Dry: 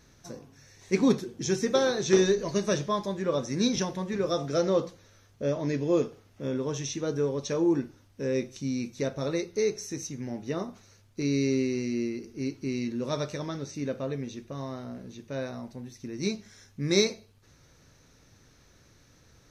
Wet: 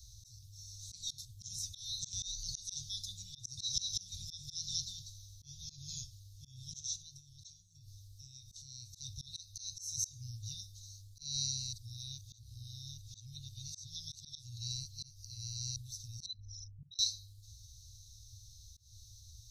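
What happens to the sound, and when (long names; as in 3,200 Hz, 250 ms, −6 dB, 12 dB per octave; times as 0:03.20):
0:01.25–0:02.22: parametric band 4,900 Hz −7 dB 1.6 octaves
0:03.38–0:06.04: single-tap delay 193 ms −4 dB
0:06.80–0:08.93: downward compressor 5 to 1, threshold −38 dBFS
0:11.73–0:15.76: reverse
0:16.26–0:16.99: spectral envelope exaggerated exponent 3
whole clip: Chebyshev band-stop filter 110–3,800 Hz, order 5; volume swells 198 ms; level +7 dB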